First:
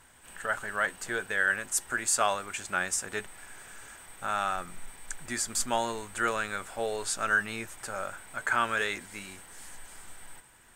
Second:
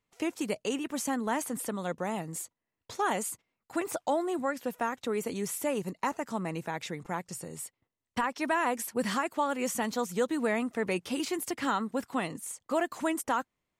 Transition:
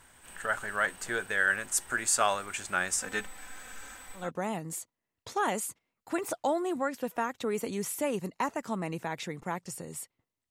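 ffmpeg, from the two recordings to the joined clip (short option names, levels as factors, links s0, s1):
-filter_complex "[0:a]asettb=1/sr,asplit=3[s0][s1][s2];[s0]atrim=end=3.004[s3];[s1]atrim=start=3:end=4.31,asetpts=PTS-STARTPTS,afade=t=in:d=0.004:c=qsin,afade=t=out:st=1.306:d=0.004:c=qsin,aecho=1:1:3.9:0.79,atrim=end_sample=57771[s4];[s2]atrim=start=4.306[s5];[s3][s4]acrossfade=d=0.004:c1=hsin:c2=qsin[s6];[s6][s5]acrossfade=d=0.004:c1=qsin:c2=hsin,apad=whole_dur=10.5,atrim=end=10.5,atrim=end=4.31,asetpts=PTS-STARTPTS[s7];[1:a]atrim=start=1.76:end=8.13,asetpts=PTS-STARTPTS[s8];[s7][s8]acrossfade=d=0.18:c1=tri:c2=tri"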